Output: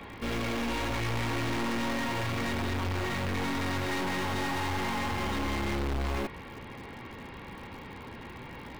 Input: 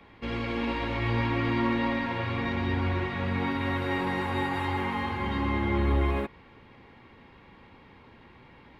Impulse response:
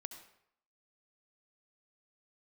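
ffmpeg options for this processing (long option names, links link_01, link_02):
-filter_complex "[0:a]aeval=exprs='(tanh(79.4*val(0)+0.4)-tanh(0.4))/79.4':channel_layout=same,asplit=2[link_01][link_02];[link_02]aeval=exprs='(mod(211*val(0)+1,2)-1)/211':channel_layout=same,volume=-9dB[link_03];[link_01][link_03]amix=inputs=2:normalize=0,volume=8.5dB"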